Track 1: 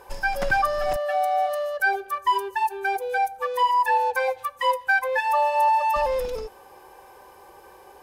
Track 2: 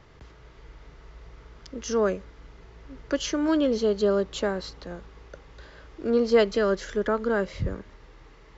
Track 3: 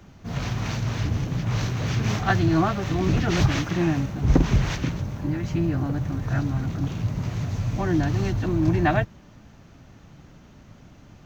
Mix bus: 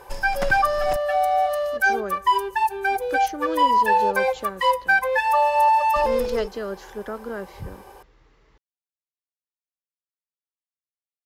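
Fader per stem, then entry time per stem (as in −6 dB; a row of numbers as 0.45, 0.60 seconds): +2.5 dB, −7.0 dB, muted; 0.00 s, 0.00 s, muted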